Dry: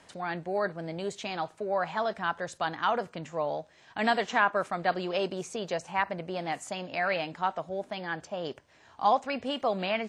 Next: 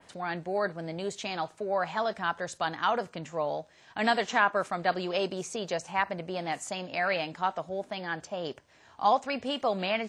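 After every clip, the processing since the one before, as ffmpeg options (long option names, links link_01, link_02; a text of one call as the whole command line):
ffmpeg -i in.wav -af "adynamicequalizer=threshold=0.00447:dfrequency=6500:dqfactor=0.76:tfrequency=6500:tqfactor=0.76:attack=5:release=100:ratio=0.375:range=2:mode=boostabove:tftype=bell" out.wav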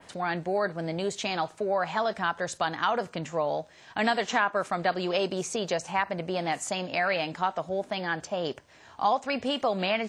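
ffmpeg -i in.wav -af "acompressor=threshold=-30dB:ratio=2,volume=5dB" out.wav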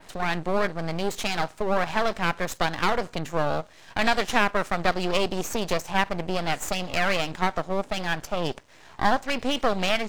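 ffmpeg -i in.wav -af "aeval=exprs='max(val(0),0)':channel_layout=same,volume=6.5dB" out.wav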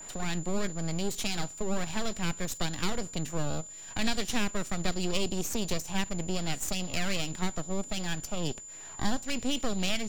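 ffmpeg -i in.wav -filter_complex "[0:a]acrossover=split=340|3000[link_01][link_02][link_03];[link_02]acompressor=threshold=-48dB:ratio=2[link_04];[link_01][link_04][link_03]amix=inputs=3:normalize=0,aeval=exprs='val(0)+0.00794*sin(2*PI*7100*n/s)':channel_layout=same,volume=-1dB" out.wav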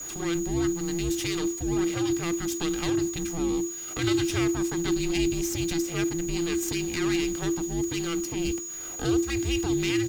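ffmpeg -i in.wav -af "aeval=exprs='val(0)+0.5*0.0126*sgn(val(0))':channel_layout=same,afreqshift=-340,aecho=1:1:2.5:0.35" out.wav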